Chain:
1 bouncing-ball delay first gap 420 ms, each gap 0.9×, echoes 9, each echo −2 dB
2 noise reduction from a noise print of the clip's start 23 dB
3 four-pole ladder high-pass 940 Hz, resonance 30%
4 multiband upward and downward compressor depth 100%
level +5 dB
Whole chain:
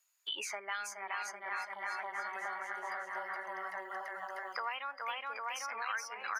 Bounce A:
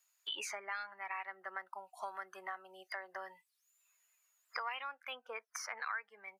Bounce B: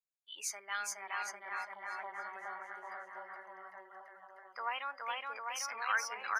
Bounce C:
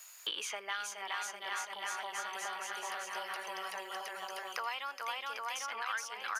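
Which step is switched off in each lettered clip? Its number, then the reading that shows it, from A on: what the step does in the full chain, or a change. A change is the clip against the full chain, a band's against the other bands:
1, change in momentary loudness spread +3 LU
4, change in crest factor +3.0 dB
2, 8 kHz band +4.5 dB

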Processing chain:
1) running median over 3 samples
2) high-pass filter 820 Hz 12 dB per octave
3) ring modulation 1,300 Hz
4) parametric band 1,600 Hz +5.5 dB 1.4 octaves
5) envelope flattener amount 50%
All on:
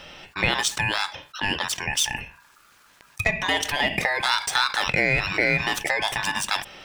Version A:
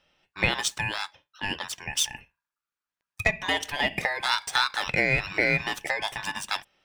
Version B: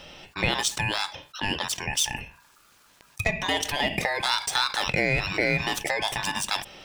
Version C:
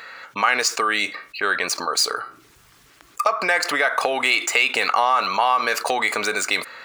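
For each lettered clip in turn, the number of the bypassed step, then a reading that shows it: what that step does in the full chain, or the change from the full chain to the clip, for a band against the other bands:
5, change in crest factor +1.5 dB
4, 2 kHz band −3.5 dB
3, 1 kHz band +5.0 dB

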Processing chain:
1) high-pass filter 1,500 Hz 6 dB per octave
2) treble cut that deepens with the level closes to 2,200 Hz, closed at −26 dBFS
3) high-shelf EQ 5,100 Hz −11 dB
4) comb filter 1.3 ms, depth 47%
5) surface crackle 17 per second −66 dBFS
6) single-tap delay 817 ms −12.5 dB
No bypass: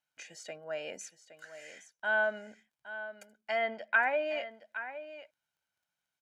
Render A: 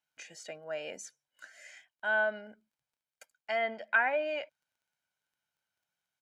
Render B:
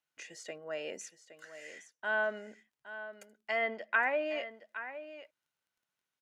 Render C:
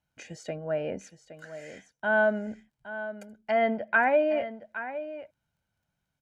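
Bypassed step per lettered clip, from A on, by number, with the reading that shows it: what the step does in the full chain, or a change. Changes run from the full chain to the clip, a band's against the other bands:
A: 6, change in integrated loudness +1.5 LU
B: 4, 250 Hz band +3.5 dB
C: 1, 250 Hz band +11.5 dB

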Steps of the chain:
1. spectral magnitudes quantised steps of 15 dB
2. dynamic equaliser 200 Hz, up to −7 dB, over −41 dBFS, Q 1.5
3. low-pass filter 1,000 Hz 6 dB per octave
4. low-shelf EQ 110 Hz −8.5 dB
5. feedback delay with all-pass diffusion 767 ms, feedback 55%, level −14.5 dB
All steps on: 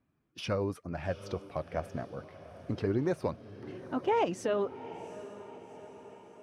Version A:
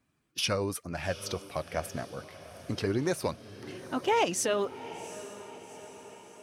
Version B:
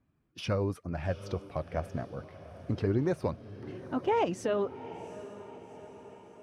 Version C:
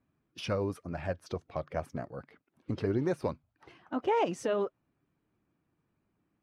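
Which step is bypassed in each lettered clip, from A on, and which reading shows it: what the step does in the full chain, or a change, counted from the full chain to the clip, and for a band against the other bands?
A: 3, 8 kHz band +15.0 dB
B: 4, 125 Hz band +4.0 dB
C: 5, echo-to-direct ratio −13.0 dB to none audible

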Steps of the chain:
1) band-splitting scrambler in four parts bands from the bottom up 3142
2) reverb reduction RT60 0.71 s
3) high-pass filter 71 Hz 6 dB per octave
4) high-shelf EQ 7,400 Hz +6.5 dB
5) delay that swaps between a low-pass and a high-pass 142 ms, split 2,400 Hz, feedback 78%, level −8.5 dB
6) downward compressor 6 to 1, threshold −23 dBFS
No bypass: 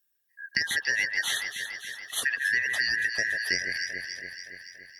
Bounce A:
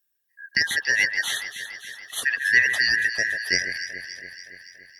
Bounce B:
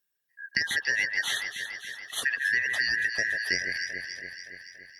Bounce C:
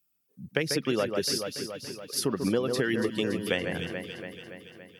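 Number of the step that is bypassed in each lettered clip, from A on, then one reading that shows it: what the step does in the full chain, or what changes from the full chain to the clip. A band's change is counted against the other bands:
6, average gain reduction 2.0 dB
4, 8 kHz band −3.0 dB
1, 250 Hz band +22.0 dB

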